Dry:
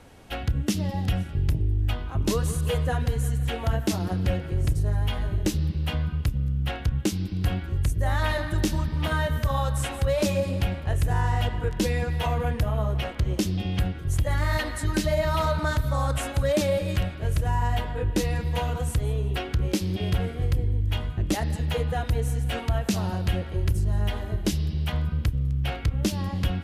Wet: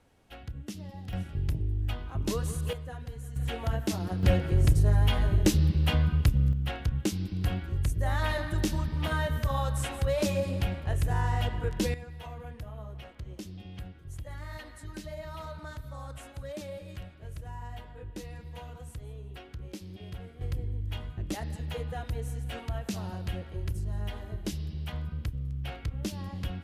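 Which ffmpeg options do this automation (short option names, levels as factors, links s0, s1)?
-af "asetnsamples=n=441:p=0,asendcmd='1.13 volume volume -6dB;2.73 volume volume -15dB;3.36 volume volume -5dB;4.23 volume volume 2dB;6.53 volume volume -4dB;11.94 volume volume -16.5dB;20.41 volume volume -9dB',volume=0.188"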